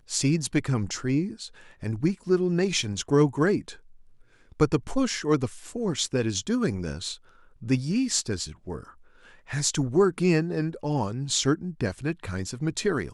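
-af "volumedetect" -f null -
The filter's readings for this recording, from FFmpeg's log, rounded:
mean_volume: -26.8 dB
max_volume: -7.4 dB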